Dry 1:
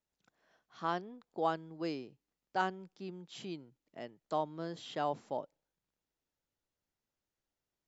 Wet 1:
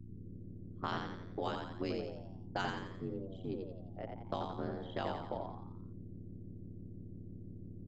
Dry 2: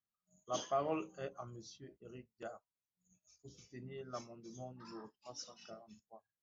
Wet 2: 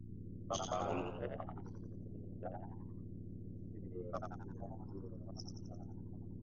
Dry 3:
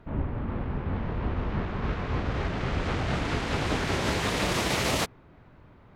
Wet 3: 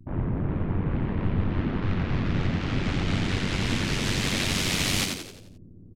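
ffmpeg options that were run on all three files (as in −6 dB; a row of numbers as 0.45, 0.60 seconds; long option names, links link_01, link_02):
-filter_complex "[0:a]anlmdn=0.398,acrossover=split=210|1900[link_01][link_02][link_03];[link_02]acompressor=threshold=-40dB:ratio=16[link_04];[link_01][link_04][link_03]amix=inputs=3:normalize=0,aeval=exprs='val(0)+0.00282*(sin(2*PI*60*n/s)+sin(2*PI*2*60*n/s)/2+sin(2*PI*3*60*n/s)/3+sin(2*PI*4*60*n/s)/4+sin(2*PI*5*60*n/s)/5)':channel_layout=same,aeval=exprs='val(0)*sin(2*PI*47*n/s)':channel_layout=same,asplit=7[link_05][link_06][link_07][link_08][link_09][link_10][link_11];[link_06]adelay=87,afreqshift=80,volume=-4.5dB[link_12];[link_07]adelay=174,afreqshift=160,volume=-11.2dB[link_13];[link_08]adelay=261,afreqshift=240,volume=-18dB[link_14];[link_09]adelay=348,afreqshift=320,volume=-24.7dB[link_15];[link_10]adelay=435,afreqshift=400,volume=-31.5dB[link_16];[link_11]adelay=522,afreqshift=480,volume=-38.2dB[link_17];[link_05][link_12][link_13][link_14][link_15][link_16][link_17]amix=inputs=7:normalize=0,volume=6dB"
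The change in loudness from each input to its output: −3.5, −1.0, +2.5 LU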